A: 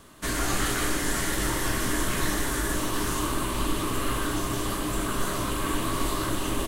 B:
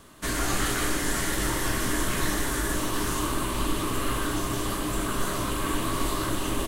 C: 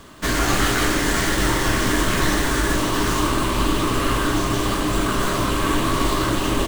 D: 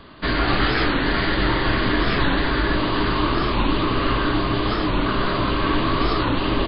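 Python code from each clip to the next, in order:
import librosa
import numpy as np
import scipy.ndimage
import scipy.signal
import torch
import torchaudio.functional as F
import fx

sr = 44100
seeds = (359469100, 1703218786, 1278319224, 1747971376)

y1 = x
y2 = fx.running_max(y1, sr, window=3)
y2 = y2 * 10.0 ** (8.0 / 20.0)
y3 = fx.brickwall_lowpass(y2, sr, high_hz=4900.0)
y3 = fx.record_warp(y3, sr, rpm=45.0, depth_cents=160.0)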